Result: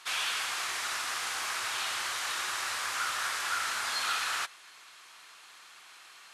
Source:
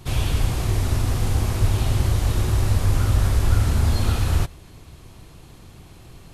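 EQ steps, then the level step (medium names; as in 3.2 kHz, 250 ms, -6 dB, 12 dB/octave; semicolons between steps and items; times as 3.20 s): resonant high-pass 1.4 kHz, resonance Q 1.8; distance through air 72 m; treble shelf 6.4 kHz +12 dB; 0.0 dB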